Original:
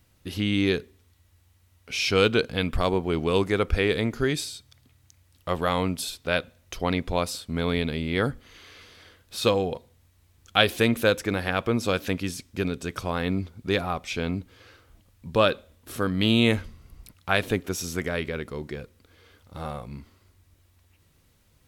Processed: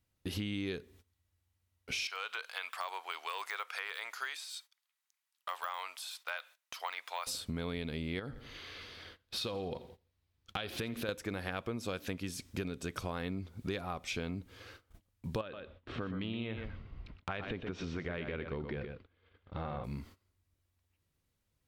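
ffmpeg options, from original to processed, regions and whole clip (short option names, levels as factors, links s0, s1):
-filter_complex "[0:a]asettb=1/sr,asplit=3[s0][s1][s2];[s0]atrim=end=2.074[s3];[s1]atrim=start=2.07:end=7.27,asetpts=PTS-STARTPTS,afade=t=in:d=0.004:c=qsin,afade=t=out:st=5.196:d=0.004:c=qsin,deesser=1,highpass=f=920:w=0.5412,highpass=f=920:w=1.3066[s4];[s2]atrim=start=7.266[s5];[s3][s4]acrossfade=d=0.004:c1=hsin:c2=qsin[s6];[s6][s5]acrossfade=d=0.004:c1=qsin:c2=hsin,asettb=1/sr,asplit=3[s7][s8][s9];[s7]atrim=end=8.194[s10];[s8]atrim=start=8.19:end=11.09,asetpts=PTS-STARTPTS,afade=t=in:d=0.004:c=qsin,afade=t=out:st=2.896:d=0.004:c=qsin,highshelf=f=5700:t=q:w=1.5:g=-6,acompressor=threshold=0.0355:ratio=3:attack=3.2:release=140:knee=1:detection=peak,aecho=1:1:85|170|255|340:0.112|0.0606|0.0327|0.0177,atrim=end_sample=127890[s11];[s9]atrim=start=11.086[s12];[s10][s11]acrossfade=d=0.004:c1=hsin:c2=qsin[s13];[s13][s12]acrossfade=d=0.004:c1=qsin:c2=hsin,asettb=1/sr,asplit=3[s14][s15][s16];[s14]atrim=end=15.414[s17];[s15]atrim=start=15.41:end=19.84,asetpts=PTS-STARTPTS,afade=t=in:d=0.004:c=qsin,afade=t=out:st=4.426:d=0.004:c=qsin,lowpass=f=3400:w=0.5412,lowpass=f=3400:w=1.3066,acompressor=threshold=0.0282:ratio=2.5:attack=3.2:release=140:knee=1:detection=peak,aecho=1:1:122:0.398,atrim=end_sample=195363[s18];[s16]atrim=start=19.836[s19];[s17][s18]acrossfade=d=0.004:c1=hsin:c2=qsin[s20];[s20][s19]acrossfade=d=0.004:c1=qsin:c2=hsin,agate=range=0.126:threshold=0.00251:ratio=16:detection=peak,acompressor=threshold=0.0178:ratio=6"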